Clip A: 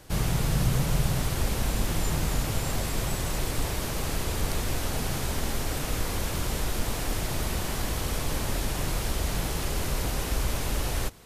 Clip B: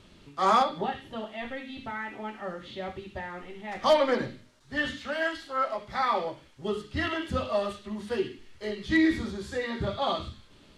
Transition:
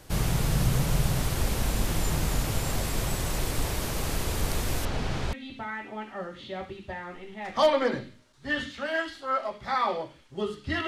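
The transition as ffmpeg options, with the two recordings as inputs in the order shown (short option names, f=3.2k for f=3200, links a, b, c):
-filter_complex "[0:a]asettb=1/sr,asplit=3[a][b][c];[a]atrim=end=4.854[d];[b]atrim=start=4.85:end=5.33,asetpts=PTS-STARTPTS,afade=t=in:d=0.004:c=qsin,afade=t=out:st=0.476:d=0.004:c=qsin,lowpass=4.2k[e];[c]atrim=start=5.326[f];[d][e]acrossfade=d=0.004:c1=hsin:c2=qsin[g];[g][f]acrossfade=d=0.004:c1=qsin:c2=hsin,apad=whole_dur=10.87,atrim=end=10.87,atrim=end=5.332[h];[1:a]atrim=start=1.598:end=7.14[i];[h][i]acrossfade=d=0.004:c1=hsin:c2=hsin"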